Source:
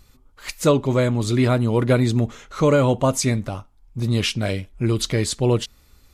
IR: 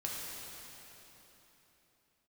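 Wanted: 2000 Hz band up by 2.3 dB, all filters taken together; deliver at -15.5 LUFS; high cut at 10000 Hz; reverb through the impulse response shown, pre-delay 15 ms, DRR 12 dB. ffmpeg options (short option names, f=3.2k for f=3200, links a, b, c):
-filter_complex "[0:a]lowpass=10k,equalizer=f=2k:t=o:g=3,asplit=2[a][b];[1:a]atrim=start_sample=2205,adelay=15[c];[b][c]afir=irnorm=-1:irlink=0,volume=-14.5dB[d];[a][d]amix=inputs=2:normalize=0,volume=4.5dB"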